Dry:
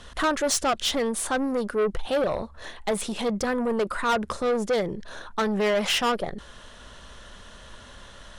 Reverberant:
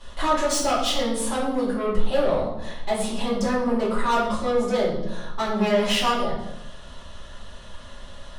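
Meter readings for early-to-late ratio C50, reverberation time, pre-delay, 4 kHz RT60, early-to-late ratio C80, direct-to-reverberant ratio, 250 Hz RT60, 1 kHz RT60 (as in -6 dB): 3.5 dB, 0.85 s, 3 ms, 0.65 s, 6.5 dB, -10.0 dB, 1.1 s, 0.75 s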